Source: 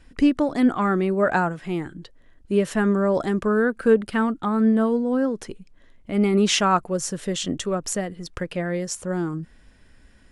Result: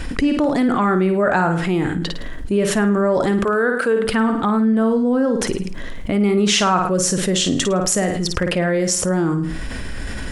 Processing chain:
0:03.44–0:04.05: Bessel high-pass filter 420 Hz, order 2
on a send: flutter between parallel walls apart 9.2 metres, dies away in 0.36 s
on the sum: envelope flattener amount 70%
level −1 dB

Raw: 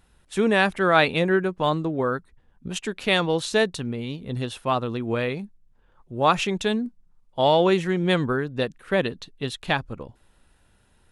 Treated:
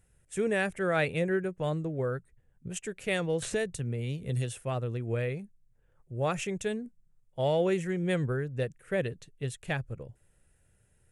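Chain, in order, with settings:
graphic EQ with 10 bands 125 Hz +9 dB, 250 Hz −7 dB, 500 Hz +5 dB, 1,000 Hz −11 dB, 2,000 Hz +4 dB, 4,000 Hz −12 dB, 8,000 Hz +9 dB
0:03.42–0:04.63: multiband upward and downward compressor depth 70%
level −7.5 dB

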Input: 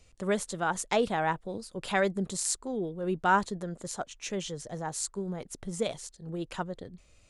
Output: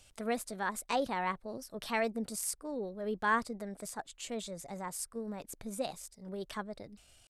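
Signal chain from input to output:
pitch shifter +2.5 semitones
one half of a high-frequency compander encoder only
level −5.5 dB

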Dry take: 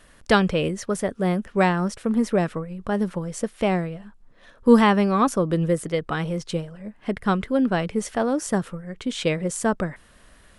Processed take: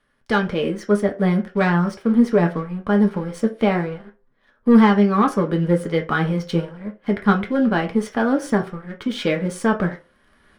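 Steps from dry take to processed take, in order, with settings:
leveller curve on the samples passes 2
automatic gain control gain up to 14 dB
flanger 0.24 Hz, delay 7.3 ms, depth 5.4 ms, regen +57%
convolution reverb RT60 0.35 s, pre-delay 3 ms, DRR 3.5 dB
level −13.5 dB

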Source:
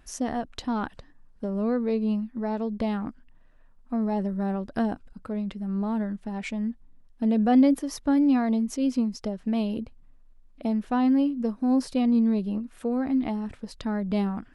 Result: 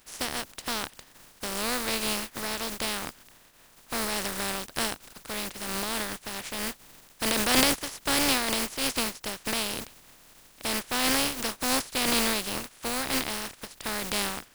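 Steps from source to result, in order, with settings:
compressing power law on the bin magnitudes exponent 0.24
level −3.5 dB

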